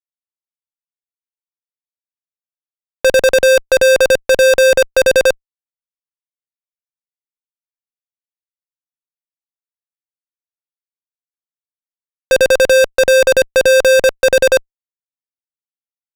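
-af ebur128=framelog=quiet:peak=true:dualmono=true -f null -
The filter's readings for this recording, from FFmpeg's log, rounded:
Integrated loudness:
  I:          -8.3 LUFS
  Threshold: -18.4 LUFS
Loudness range:
  LRA:         8.6 LU
  Threshold: -31.0 LUFS
  LRA low:   -17.6 LUFS
  LRA high:   -8.9 LUFS
True peak:
  Peak:       -5.9 dBFS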